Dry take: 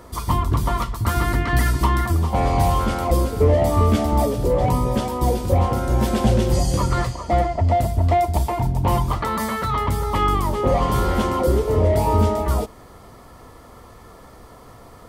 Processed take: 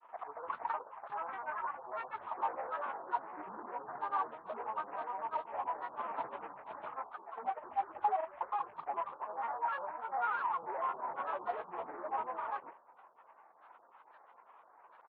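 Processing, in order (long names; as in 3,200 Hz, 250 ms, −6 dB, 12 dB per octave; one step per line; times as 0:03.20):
variable-slope delta modulation 16 kbit/s
pitch shifter −6.5 semitones
granular cloud, grains 20 per second, pitch spread up and down by 12 semitones
four-pole ladder band-pass 1,100 Hz, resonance 50%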